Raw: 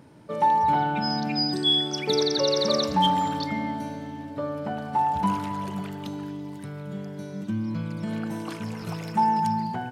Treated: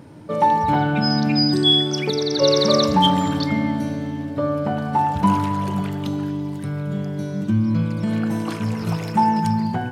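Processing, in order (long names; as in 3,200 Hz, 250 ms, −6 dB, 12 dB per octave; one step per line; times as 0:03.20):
low-shelf EQ 460 Hz +3.5 dB
0:01.82–0:02.42: downward compressor, threshold −24 dBFS, peak gain reduction 7 dB
convolution reverb RT60 0.85 s, pre-delay 5 ms, DRR 10 dB
level +5.5 dB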